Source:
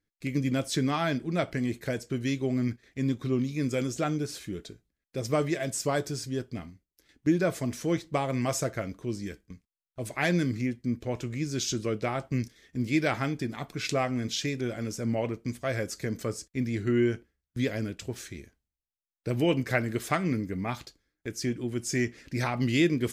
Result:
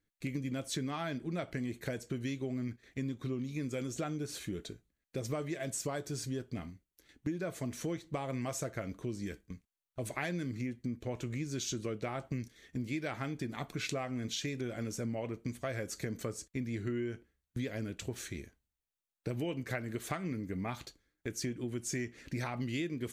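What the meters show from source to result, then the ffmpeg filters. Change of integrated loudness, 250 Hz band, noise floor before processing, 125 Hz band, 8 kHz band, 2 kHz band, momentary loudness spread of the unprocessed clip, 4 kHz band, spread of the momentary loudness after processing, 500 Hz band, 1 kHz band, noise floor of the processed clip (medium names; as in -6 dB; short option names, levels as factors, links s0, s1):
-8.5 dB, -8.5 dB, under -85 dBFS, -7.5 dB, -5.0 dB, -9.0 dB, 12 LU, -7.5 dB, 7 LU, -9.0 dB, -9.0 dB, under -85 dBFS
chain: -af "bandreject=f=5100:w=8.8,acompressor=threshold=0.02:ratio=6"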